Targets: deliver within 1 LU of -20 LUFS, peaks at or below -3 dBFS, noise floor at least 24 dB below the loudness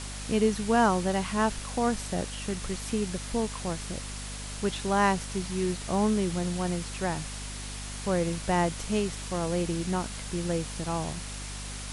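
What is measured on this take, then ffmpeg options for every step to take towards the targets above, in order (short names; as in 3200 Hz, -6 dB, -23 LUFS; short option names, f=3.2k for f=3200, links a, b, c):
hum 50 Hz; harmonics up to 250 Hz; hum level -37 dBFS; noise floor -38 dBFS; noise floor target -54 dBFS; loudness -29.5 LUFS; peak -11.0 dBFS; loudness target -20.0 LUFS
-> -af "bandreject=f=50:t=h:w=6,bandreject=f=100:t=h:w=6,bandreject=f=150:t=h:w=6,bandreject=f=200:t=h:w=6,bandreject=f=250:t=h:w=6"
-af "afftdn=nr=16:nf=-38"
-af "volume=9.5dB,alimiter=limit=-3dB:level=0:latency=1"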